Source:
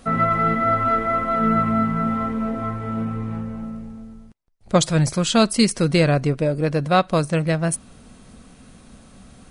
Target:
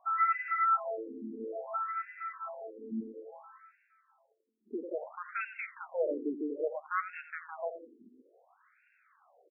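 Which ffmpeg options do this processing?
-filter_complex "[0:a]acrossover=split=1500[a][b];[a]asoftclip=type=tanh:threshold=-13dB[c];[c][b]amix=inputs=2:normalize=0,asplit=2[d][e];[e]adelay=86,lowpass=f=3.2k:p=1,volume=-10dB,asplit=2[f][g];[g]adelay=86,lowpass=f=3.2k:p=1,volume=0.54,asplit=2[h][i];[i]adelay=86,lowpass=f=3.2k:p=1,volume=0.54,asplit=2[j][k];[k]adelay=86,lowpass=f=3.2k:p=1,volume=0.54,asplit=2[l][m];[m]adelay=86,lowpass=f=3.2k:p=1,volume=0.54,asplit=2[n][o];[o]adelay=86,lowpass=f=3.2k:p=1,volume=0.54[p];[d][f][h][j][l][n][p]amix=inputs=7:normalize=0,afftfilt=real='re*between(b*sr/1024,300*pow(2000/300,0.5+0.5*sin(2*PI*0.59*pts/sr))/1.41,300*pow(2000/300,0.5+0.5*sin(2*PI*0.59*pts/sr))*1.41)':imag='im*between(b*sr/1024,300*pow(2000/300,0.5+0.5*sin(2*PI*0.59*pts/sr))/1.41,300*pow(2000/300,0.5+0.5*sin(2*PI*0.59*pts/sr))*1.41)':win_size=1024:overlap=0.75,volume=-7dB"

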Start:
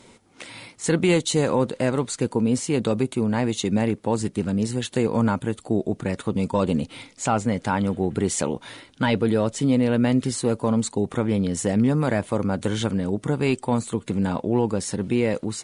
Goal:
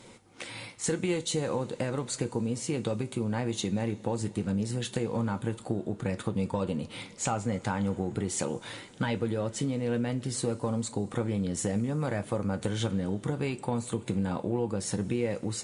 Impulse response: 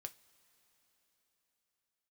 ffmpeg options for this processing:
-filter_complex "[0:a]acompressor=threshold=-26dB:ratio=6[a];[1:a]atrim=start_sample=2205[b];[a][b]afir=irnorm=-1:irlink=0,volume=4dB"

